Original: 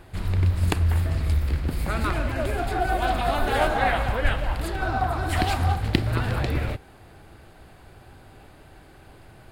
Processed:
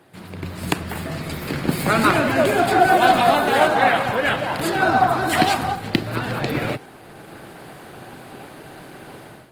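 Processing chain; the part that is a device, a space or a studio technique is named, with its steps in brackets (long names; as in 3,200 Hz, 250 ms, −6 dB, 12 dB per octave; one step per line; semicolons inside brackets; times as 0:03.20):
high-pass filter 97 Hz 12 dB per octave
video call (high-pass filter 130 Hz 24 dB per octave; automatic gain control gain up to 15 dB; level −1 dB; Opus 20 kbit/s 48,000 Hz)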